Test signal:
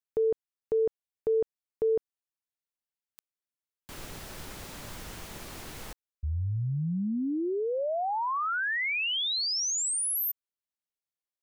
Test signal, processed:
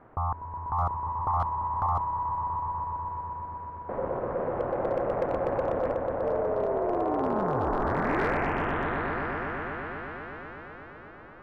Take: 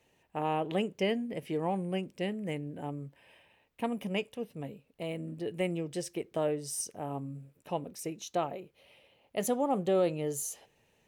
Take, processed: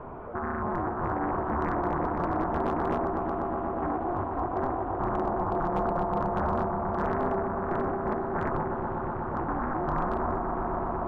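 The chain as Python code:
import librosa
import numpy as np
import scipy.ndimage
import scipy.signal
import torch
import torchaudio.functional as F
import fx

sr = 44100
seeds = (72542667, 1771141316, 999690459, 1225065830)

p1 = x + 0.5 * 10.0 ** (-37.0 / 20.0) * np.sign(x)
p2 = scipy.signal.sosfilt(scipy.signal.bessel(4, 610.0, 'lowpass', norm='mag', fs=sr, output='sos'), p1)
p3 = fx.over_compress(p2, sr, threshold_db=-36.0, ratio=-0.5)
p4 = p2 + (p3 * 10.0 ** (2.5 / 20.0))
p5 = p4 * np.sin(2.0 * np.pi * 530.0 * np.arange(len(p4)) / sr)
p6 = fx.echo_swell(p5, sr, ms=123, loudest=5, wet_db=-8.0)
p7 = np.clip(10.0 ** (19.5 / 20.0) * p6, -1.0, 1.0) / 10.0 ** (19.5 / 20.0)
y = fx.doppler_dist(p7, sr, depth_ms=0.68)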